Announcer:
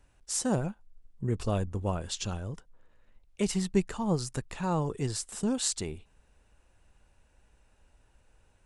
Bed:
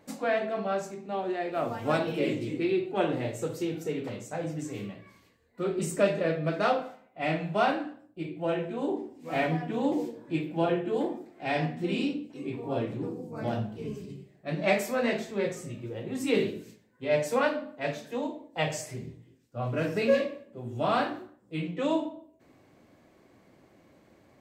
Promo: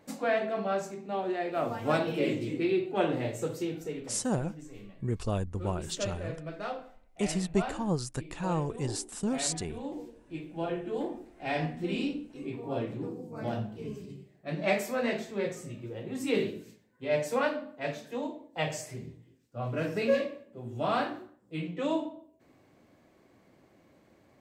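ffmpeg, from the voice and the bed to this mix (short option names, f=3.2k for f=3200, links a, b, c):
-filter_complex "[0:a]adelay=3800,volume=-1.5dB[a];[1:a]volume=8dB,afade=t=out:st=3.48:d=0.77:silence=0.298538,afade=t=in:st=10.26:d=1.08:silence=0.375837[b];[a][b]amix=inputs=2:normalize=0"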